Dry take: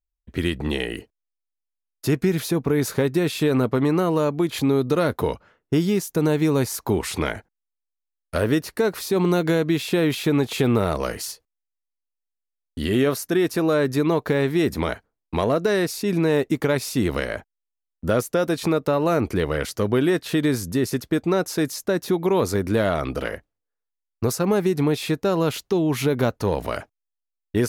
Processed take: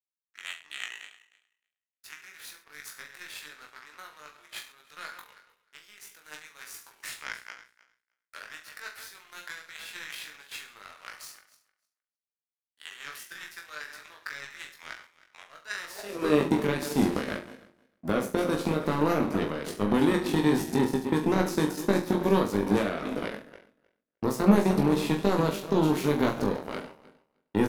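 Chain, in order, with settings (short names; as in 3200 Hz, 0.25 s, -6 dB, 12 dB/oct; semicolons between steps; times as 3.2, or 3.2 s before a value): regenerating reverse delay 0.154 s, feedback 57%, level -9 dB; limiter -15.5 dBFS, peak gain reduction 8 dB; high-pass sweep 1600 Hz -> 210 Hz, 15.7–16.47; power-law curve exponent 2; reverse bouncing-ball echo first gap 20 ms, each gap 1.15×, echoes 5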